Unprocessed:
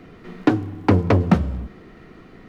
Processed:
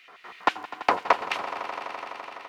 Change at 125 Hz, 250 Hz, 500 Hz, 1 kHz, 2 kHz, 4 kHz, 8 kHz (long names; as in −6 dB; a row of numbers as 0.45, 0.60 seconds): below −35 dB, −22.5 dB, −7.5 dB, +3.5 dB, +2.5 dB, +4.0 dB, can't be measured